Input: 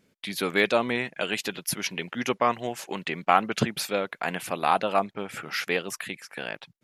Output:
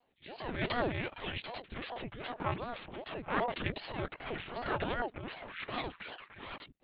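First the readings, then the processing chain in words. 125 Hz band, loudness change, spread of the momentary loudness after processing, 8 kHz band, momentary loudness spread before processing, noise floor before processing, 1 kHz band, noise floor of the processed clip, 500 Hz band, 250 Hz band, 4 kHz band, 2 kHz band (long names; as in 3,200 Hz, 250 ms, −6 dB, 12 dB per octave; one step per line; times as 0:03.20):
−4.0 dB, −11.0 dB, 12 LU, below −40 dB, 12 LU, −72 dBFS, −12.0 dB, −69 dBFS, −11.0 dB, −9.5 dB, −10.5 dB, −10.5 dB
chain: transient designer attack −11 dB, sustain +10 dB
echo ahead of the sound 73 ms −22.5 dB
one-pitch LPC vocoder at 8 kHz 240 Hz
ring modulator whose carrier an LFO sweeps 410 Hz, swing 80%, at 2.6 Hz
level −6.5 dB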